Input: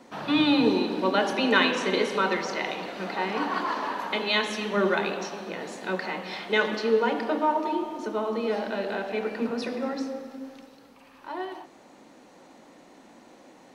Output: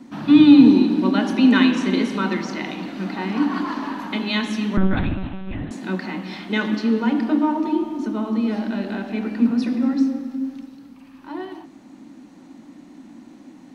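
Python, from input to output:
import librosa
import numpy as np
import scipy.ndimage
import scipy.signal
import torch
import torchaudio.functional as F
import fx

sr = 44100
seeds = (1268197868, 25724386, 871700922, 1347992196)

y = fx.lpc_monotone(x, sr, seeds[0], pitch_hz=190.0, order=8, at=(4.77, 5.71))
y = fx.low_shelf_res(y, sr, hz=360.0, db=8.0, q=3.0)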